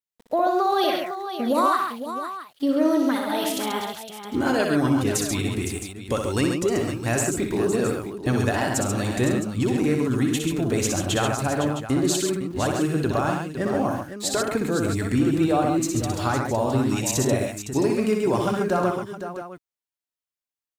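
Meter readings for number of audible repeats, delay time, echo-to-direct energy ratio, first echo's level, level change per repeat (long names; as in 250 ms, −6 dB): 5, 61 ms, −1.0 dB, −5.0 dB, repeats not evenly spaced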